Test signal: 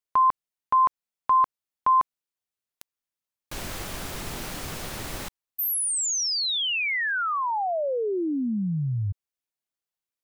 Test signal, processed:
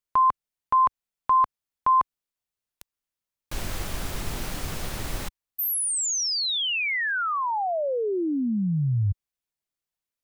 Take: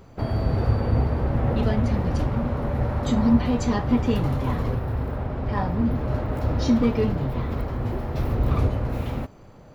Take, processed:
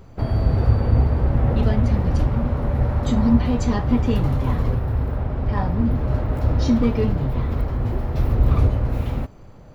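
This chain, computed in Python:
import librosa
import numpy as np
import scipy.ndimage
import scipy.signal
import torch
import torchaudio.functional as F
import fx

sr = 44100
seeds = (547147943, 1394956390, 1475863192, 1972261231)

y = fx.low_shelf(x, sr, hz=93.0, db=9.0)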